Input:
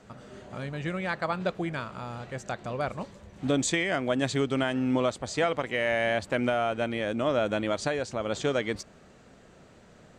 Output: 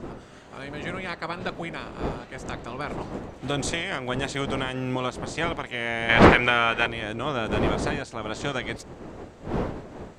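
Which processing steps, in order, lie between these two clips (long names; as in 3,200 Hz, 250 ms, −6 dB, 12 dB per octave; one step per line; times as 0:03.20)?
ceiling on every frequency bin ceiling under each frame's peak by 13 dB
wind on the microphone 480 Hz −29 dBFS
0:06.09–0:06.87: parametric band 2,100 Hz +12 dB 2.5 octaves
level −2 dB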